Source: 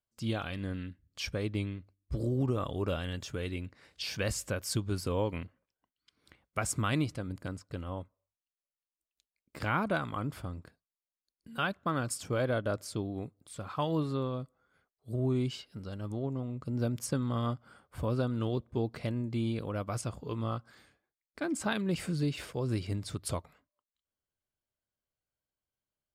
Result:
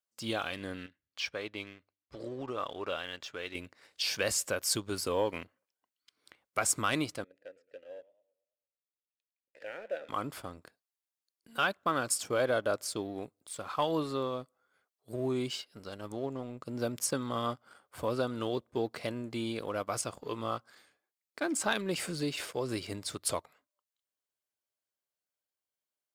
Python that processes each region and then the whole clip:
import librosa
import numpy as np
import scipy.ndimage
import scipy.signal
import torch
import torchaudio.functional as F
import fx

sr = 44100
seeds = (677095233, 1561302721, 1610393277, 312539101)

y = fx.chain(x, sr, fx.lowpass(hz=3900.0, slope=12),
    fx.low_shelf(hz=490.0, db=-10.0), at=(0.86, 3.55))
y = fx.chain(y, sr, fx.vowel_filter(vowel='e'),
    fx.echo_warbled(ms=109, feedback_pct=43, rate_hz=2.8, cents=124, wet_db=-16.0), at=(7.24, 10.09))
y = scipy.signal.sosfilt(scipy.signal.butter(2, 68.0, 'highpass', fs=sr, output='sos'), y)
y = fx.bass_treble(y, sr, bass_db=-14, treble_db=3)
y = fx.leveller(y, sr, passes=1)